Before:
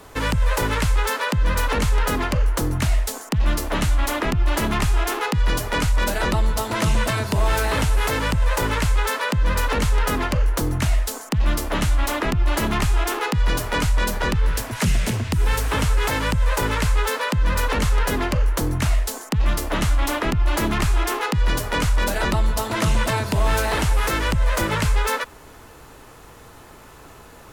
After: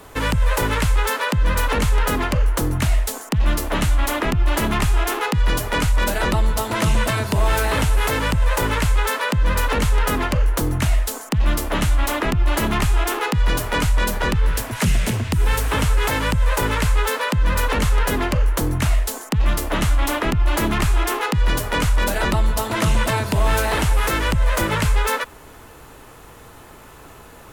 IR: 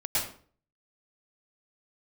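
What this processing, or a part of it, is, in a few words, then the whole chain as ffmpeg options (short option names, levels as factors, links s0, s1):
exciter from parts: -filter_complex "[0:a]asplit=2[s0][s1];[s1]highpass=f=3100:w=0.5412,highpass=f=3100:w=1.3066,asoftclip=type=tanh:threshold=0.0794,highpass=4200,volume=0.282[s2];[s0][s2]amix=inputs=2:normalize=0,volume=1.19"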